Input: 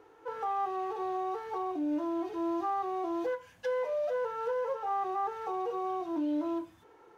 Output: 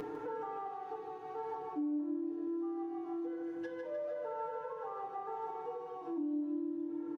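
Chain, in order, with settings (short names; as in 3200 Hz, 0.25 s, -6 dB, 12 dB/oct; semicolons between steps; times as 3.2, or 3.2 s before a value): in parallel at -1 dB: limiter -32.5 dBFS, peak gain reduction 7.5 dB; on the sum: high shelf 2200 Hz -8.5 dB; upward compressor, threshold -39 dBFS; bell 290 Hz +14.5 dB 0.22 oct; feedback echo 0.152 s, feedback 55%, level -5 dB; on a send at -1 dB: reverb RT60 0.85 s, pre-delay 3 ms; on the sum: compressor 6:1, threshold -44 dBFS, peak gain reduction 30.5 dB; comb 6.6 ms, depth 74%; gain +1.5 dB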